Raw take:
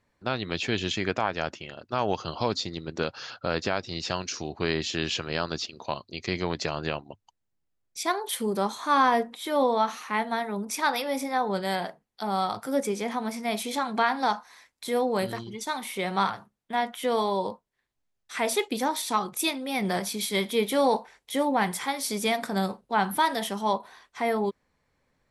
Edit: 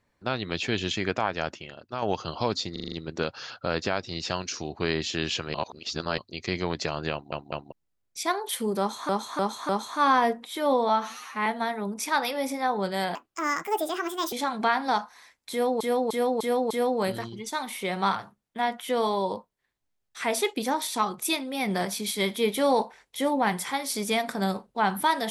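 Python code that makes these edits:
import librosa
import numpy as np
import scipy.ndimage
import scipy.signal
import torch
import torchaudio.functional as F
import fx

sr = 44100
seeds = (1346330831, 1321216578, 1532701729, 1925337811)

y = fx.edit(x, sr, fx.fade_out_to(start_s=1.51, length_s=0.51, floor_db=-6.0),
    fx.stutter(start_s=2.72, slice_s=0.04, count=6),
    fx.reverse_span(start_s=5.34, length_s=0.64),
    fx.stutter_over(start_s=6.92, slice_s=0.2, count=3),
    fx.repeat(start_s=8.59, length_s=0.3, count=4),
    fx.stretch_span(start_s=9.79, length_s=0.38, factor=1.5),
    fx.speed_span(start_s=11.86, length_s=1.81, speed=1.54),
    fx.repeat(start_s=14.85, length_s=0.3, count=5), tone=tone)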